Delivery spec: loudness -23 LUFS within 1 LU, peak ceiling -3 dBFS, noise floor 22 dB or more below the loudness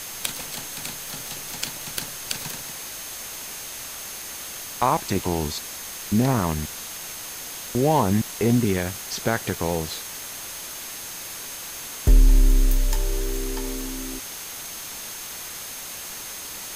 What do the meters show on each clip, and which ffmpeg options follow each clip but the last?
steady tone 6400 Hz; tone level -41 dBFS; noise floor -36 dBFS; noise floor target -49 dBFS; loudness -27.0 LUFS; peak -5.5 dBFS; loudness target -23.0 LUFS
-> -af "bandreject=f=6.4k:w=30"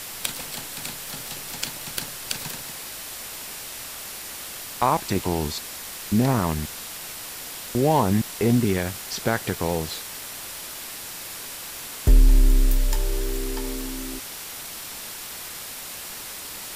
steady tone none; noise floor -37 dBFS; noise floor target -49 dBFS
-> -af "afftdn=nr=12:nf=-37"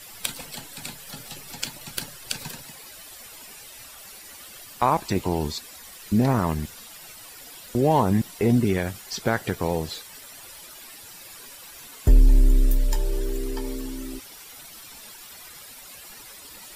noise floor -44 dBFS; noise floor target -48 dBFS
-> -af "afftdn=nr=6:nf=-44"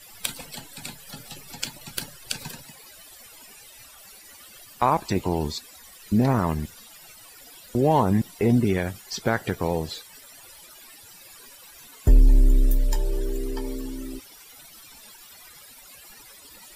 noise floor -48 dBFS; loudness -25.5 LUFS; peak -6.5 dBFS; loudness target -23.0 LUFS
-> -af "volume=2.5dB"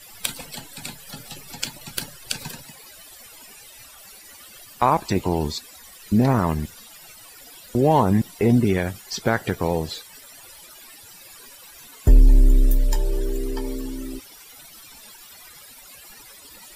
loudness -23.0 LUFS; peak -4.0 dBFS; noise floor -46 dBFS

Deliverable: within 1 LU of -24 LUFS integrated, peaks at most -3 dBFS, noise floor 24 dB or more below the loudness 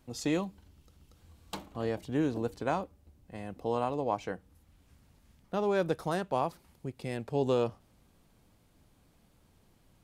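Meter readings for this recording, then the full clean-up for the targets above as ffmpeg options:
loudness -33.5 LUFS; peak -17.0 dBFS; loudness target -24.0 LUFS
-> -af "volume=9.5dB"

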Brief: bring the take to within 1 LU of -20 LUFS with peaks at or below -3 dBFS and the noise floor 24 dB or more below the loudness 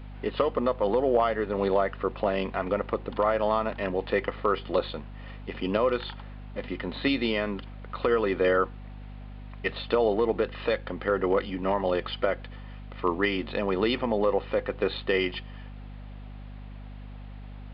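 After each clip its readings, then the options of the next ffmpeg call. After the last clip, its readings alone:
hum 50 Hz; harmonics up to 250 Hz; hum level -39 dBFS; loudness -27.5 LUFS; peak -12.0 dBFS; loudness target -20.0 LUFS
-> -af "bandreject=f=50:t=h:w=4,bandreject=f=100:t=h:w=4,bandreject=f=150:t=h:w=4,bandreject=f=200:t=h:w=4,bandreject=f=250:t=h:w=4"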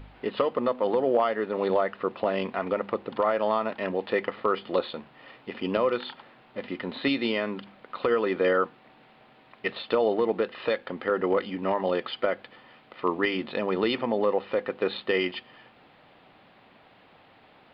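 hum none; loudness -27.5 LUFS; peak -12.0 dBFS; loudness target -20.0 LUFS
-> -af "volume=7.5dB"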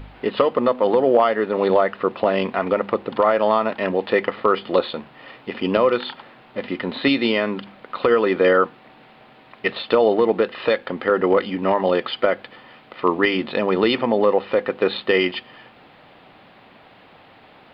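loudness -20.0 LUFS; peak -4.5 dBFS; noise floor -49 dBFS

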